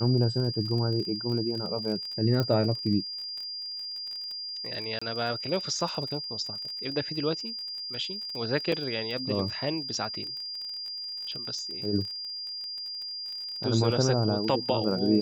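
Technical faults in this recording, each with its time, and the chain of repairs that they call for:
surface crackle 27 per second −35 dBFS
whistle 4,800 Hz −34 dBFS
0:02.40: click −15 dBFS
0:04.99–0:05.01: drop-out 25 ms
0:08.72: drop-out 3.4 ms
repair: click removal
notch filter 4,800 Hz, Q 30
repair the gap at 0:04.99, 25 ms
repair the gap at 0:08.72, 3.4 ms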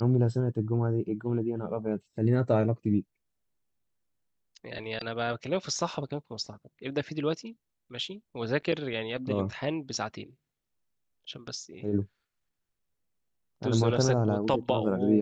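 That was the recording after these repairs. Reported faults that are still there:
none of them is left

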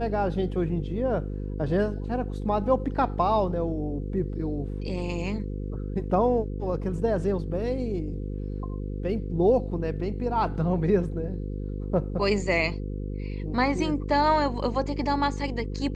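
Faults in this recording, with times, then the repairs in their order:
mains buzz 50 Hz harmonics 10 −32 dBFS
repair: hum removal 50 Hz, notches 10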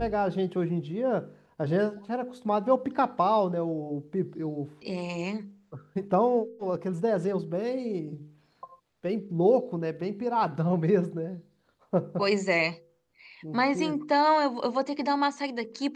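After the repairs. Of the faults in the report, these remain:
none of them is left

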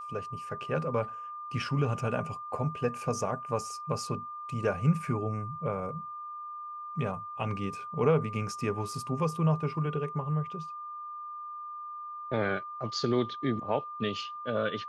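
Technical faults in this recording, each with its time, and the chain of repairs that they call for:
whistle 1,200 Hz −38 dBFS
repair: notch filter 1,200 Hz, Q 30

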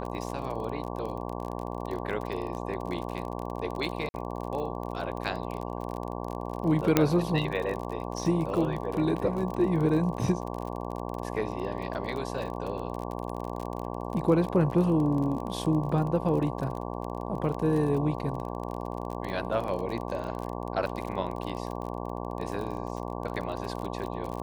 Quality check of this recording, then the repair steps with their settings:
mains buzz 60 Hz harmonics 19 −35 dBFS
surface crackle 35 per second −33 dBFS
0:04.09–0:04.14: drop-out 50 ms
0:06.97: click −6 dBFS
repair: click removal
hum removal 60 Hz, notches 19
repair the gap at 0:04.09, 50 ms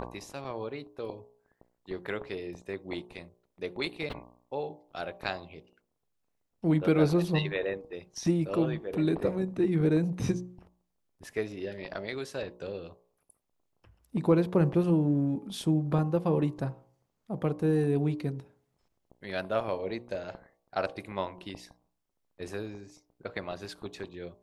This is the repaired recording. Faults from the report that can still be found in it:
none of them is left

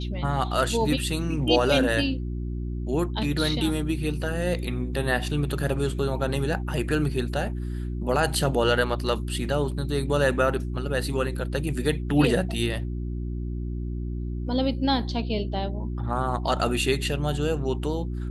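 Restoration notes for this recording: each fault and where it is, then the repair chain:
mains hum 60 Hz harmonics 6 −30 dBFS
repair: hum removal 60 Hz, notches 6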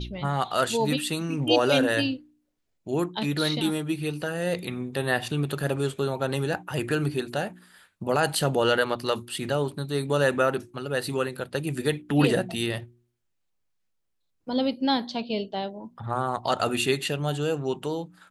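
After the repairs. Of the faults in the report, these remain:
none of them is left

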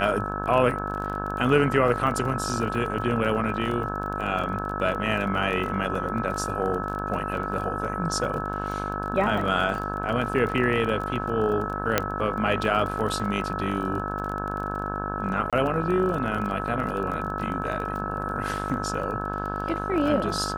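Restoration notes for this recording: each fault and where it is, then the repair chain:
mains buzz 50 Hz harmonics 34 −32 dBFS
surface crackle 24 per second −31 dBFS
whistle 1,300 Hz −32 dBFS
0:11.98: click −4 dBFS
0:15.50–0:15.53: drop-out 26 ms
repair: click removal
notch filter 1,300 Hz, Q 30
hum removal 50 Hz, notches 34
repair the gap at 0:15.50, 26 ms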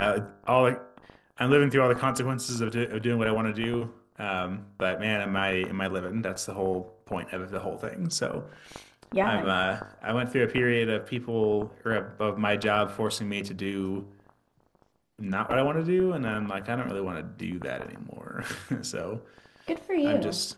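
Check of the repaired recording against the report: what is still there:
none of them is left

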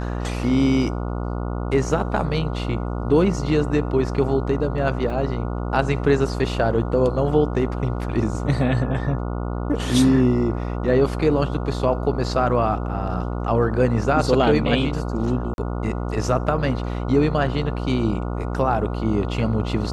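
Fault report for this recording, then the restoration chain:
mains buzz 60 Hz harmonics 24 −26 dBFS
0:05.10: drop-out 2.5 ms
0:15.54–0:15.58: drop-out 41 ms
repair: hum removal 60 Hz, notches 24
repair the gap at 0:05.10, 2.5 ms
repair the gap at 0:15.54, 41 ms

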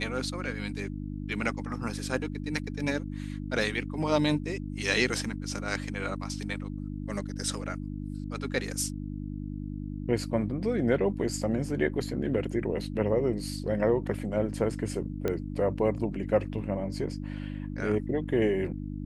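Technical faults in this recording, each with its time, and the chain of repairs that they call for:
mains hum 50 Hz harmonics 6 −36 dBFS
0:15.28: click −16 dBFS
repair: click removal
hum removal 50 Hz, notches 6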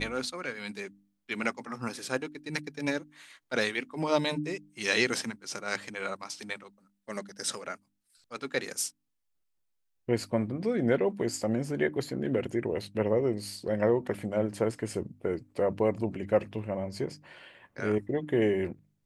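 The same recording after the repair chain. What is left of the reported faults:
none of them is left

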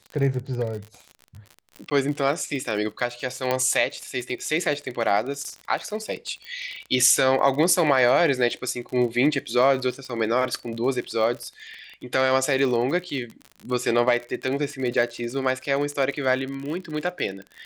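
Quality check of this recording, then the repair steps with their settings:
surface crackle 49 per second −31 dBFS
0:01.90–0:01.91: drop-out 10 ms
0:03.51: click −10 dBFS
0:06.45: click −26 dBFS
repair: click removal
repair the gap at 0:01.90, 10 ms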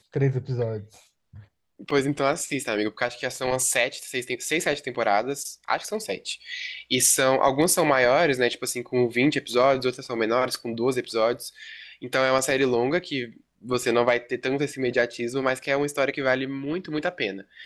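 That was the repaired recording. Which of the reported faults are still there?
none of them is left

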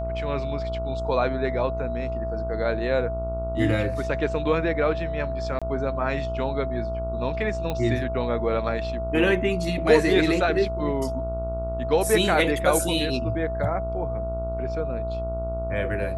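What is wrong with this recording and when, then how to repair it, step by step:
mains buzz 60 Hz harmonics 24 −31 dBFS
whistle 660 Hz −29 dBFS
0:05.59–0:05.62: drop-out 26 ms
0:07.70: click −15 dBFS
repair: click removal
hum removal 60 Hz, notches 24
notch filter 660 Hz, Q 30
repair the gap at 0:05.59, 26 ms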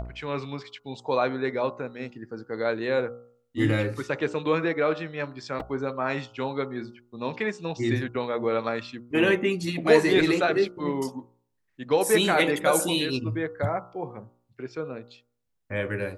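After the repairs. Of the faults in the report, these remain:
none of them is left

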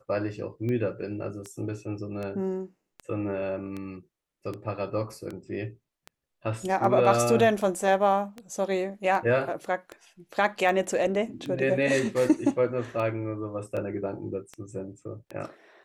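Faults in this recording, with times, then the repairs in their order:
scratch tick 78 rpm −23 dBFS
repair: click removal

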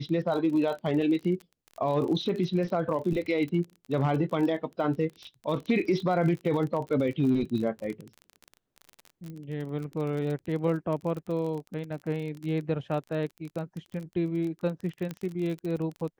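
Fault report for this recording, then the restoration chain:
surface crackle 32 per second −34 dBFS
0:09.30: click −31 dBFS
0:15.11: click −21 dBFS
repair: click removal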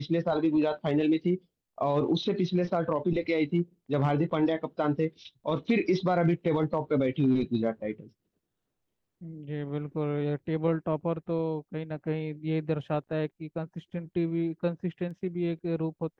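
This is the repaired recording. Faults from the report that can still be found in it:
0:09.30: click
0:15.11: click

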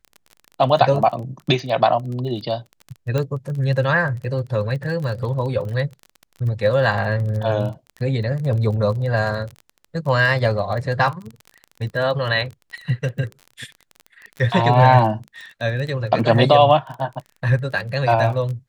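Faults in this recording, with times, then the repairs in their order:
surface crackle 25 per second −28 dBFS
0:03.18: click −11 dBFS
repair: click removal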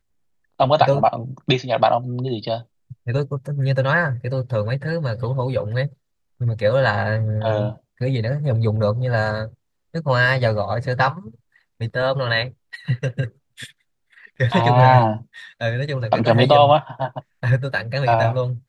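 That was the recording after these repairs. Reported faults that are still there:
none of them is left

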